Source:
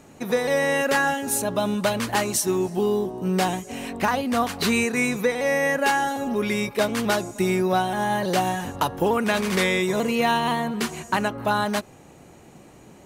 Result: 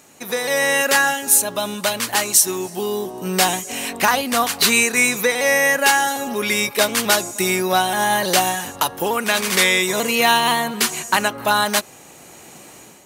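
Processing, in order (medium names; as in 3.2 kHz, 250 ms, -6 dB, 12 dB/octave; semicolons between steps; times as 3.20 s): tilt EQ +3 dB/octave; level rider gain up to 8 dB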